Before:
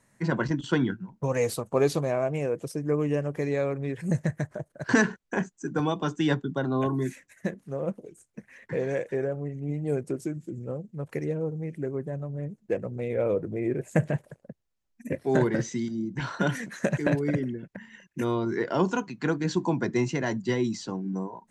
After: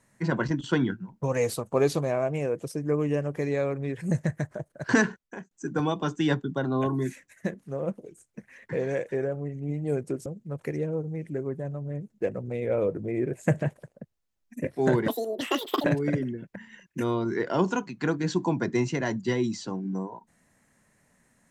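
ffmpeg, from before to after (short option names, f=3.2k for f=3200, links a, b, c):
-filter_complex "[0:a]asplit=5[a][b][c][d][e];[a]atrim=end=5.51,asetpts=PTS-STARTPTS,afade=t=out:st=4.98:d=0.53[f];[b]atrim=start=5.51:end=10.262,asetpts=PTS-STARTPTS,afade=t=in:d=0.004:c=hsin[g];[c]atrim=start=10.738:end=15.564[h];[d]atrim=start=15.56:end=17.05,asetpts=PTS-STARTPTS,asetrate=85995,aresample=44100[i];[e]atrim=start=17.046[j];[f][g]concat=n=2:v=0:a=1[k];[k][h]acrossfade=d=0.004:c1=hsin:c2=hsin[l];[l][i]acrossfade=d=0.004:c1=hsin:c2=hsin[m];[m][j]acrossfade=d=0.004:c1=hsin:c2=hsin"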